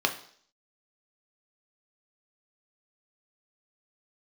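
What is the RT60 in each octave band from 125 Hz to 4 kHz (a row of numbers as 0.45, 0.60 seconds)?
0.45, 0.55, 0.60, 0.55, 0.55, 0.65 seconds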